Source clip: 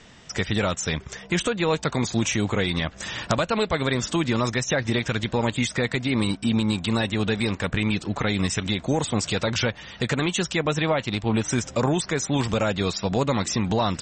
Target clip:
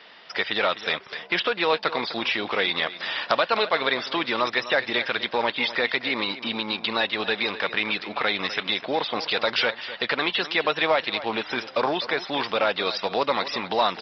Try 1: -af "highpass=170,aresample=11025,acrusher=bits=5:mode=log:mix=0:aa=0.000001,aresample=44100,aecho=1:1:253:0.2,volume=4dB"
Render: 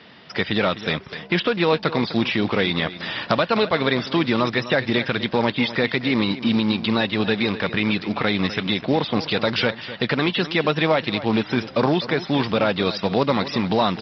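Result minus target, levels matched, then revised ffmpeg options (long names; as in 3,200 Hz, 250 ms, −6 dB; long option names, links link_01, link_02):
125 Hz band +15.0 dB
-af "highpass=550,aresample=11025,acrusher=bits=5:mode=log:mix=0:aa=0.000001,aresample=44100,aecho=1:1:253:0.2,volume=4dB"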